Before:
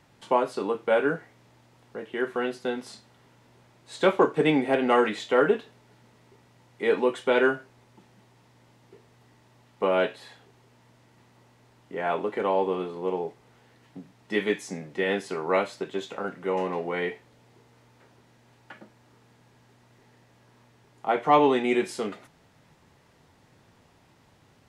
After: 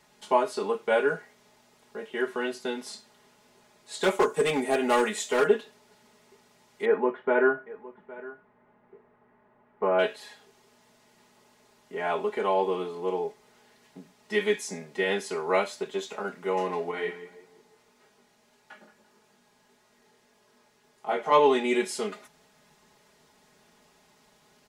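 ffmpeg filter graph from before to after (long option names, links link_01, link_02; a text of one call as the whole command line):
ffmpeg -i in.wav -filter_complex "[0:a]asettb=1/sr,asplit=3[link_01][link_02][link_03];[link_01]atrim=end=4.034[link_04];[link_02]atrim=start=4.03:end=5.47,asetpts=PTS-STARTPTS,afade=type=in:duration=0.004:curve=qsin,afade=type=out:start_time=1.436:duration=0.004:curve=qsin,highshelf=frequency=5700:width_type=q:width=1.5:gain=7.5,asoftclip=type=hard:threshold=-16dB[link_05];[link_03]atrim=start=5.466[link_06];[link_04][link_05]acrossfade=duration=0.004:curve1=hsin:curve2=qsin[link_07];[link_07][link_06]acrossfade=duration=0.004:curve1=qsin:curve2=hsin,asettb=1/sr,asplit=3[link_08][link_09][link_10];[link_08]atrim=end=6.854[link_11];[link_09]atrim=start=6.85:end=9.99,asetpts=PTS-STARTPTS,afade=type=in:duration=0.004:curve=qsin,afade=type=out:start_time=3.136:duration=0.004:curve=qsin,lowpass=frequency=1800:width=0.5412,lowpass=frequency=1800:width=1.3066,aecho=1:1:812:0.112,atrim=end_sample=138474[link_12];[link_10]atrim=start=9.986[link_13];[link_11][link_12]acrossfade=duration=0.004:curve1=hsin:curve2=qsin[link_14];[link_14][link_13]acrossfade=duration=0.004:curve1=qsin:curve2=hsin,asettb=1/sr,asplit=3[link_15][link_16][link_17];[link_15]atrim=end=16.914[link_18];[link_16]atrim=start=16.91:end=21.32,asetpts=PTS-STARTPTS,afade=type=in:duration=0.004:curve=qsin,afade=type=out:start_time=4.406:duration=0.004:curve=qsin,asplit=2[link_19][link_20];[link_20]adelay=171,lowpass=frequency=1600:poles=1,volume=-11dB,asplit=2[link_21][link_22];[link_22]adelay=171,lowpass=frequency=1600:poles=1,volume=0.45,asplit=2[link_23][link_24];[link_24]adelay=171,lowpass=frequency=1600:poles=1,volume=0.45,asplit=2[link_25][link_26];[link_26]adelay=171,lowpass=frequency=1600:poles=1,volume=0.45,asplit=2[link_27][link_28];[link_28]adelay=171,lowpass=frequency=1600:poles=1,volume=0.45[link_29];[link_19][link_21][link_23][link_25][link_27][link_29]amix=inputs=6:normalize=0,atrim=end_sample=194481,flanger=delay=18.5:depth=5:speed=1.7[link_30];[link_17]atrim=start=21.316[link_31];[link_18][link_30]acrossfade=duration=0.004:curve1=hsin:curve2=qsin[link_32];[link_32][link_31]acrossfade=duration=0.004:curve1=qsin:curve2=hsin,bass=frequency=250:gain=-7,treble=frequency=4000:gain=6,aecho=1:1:4.8:0.91,volume=-3dB" out.wav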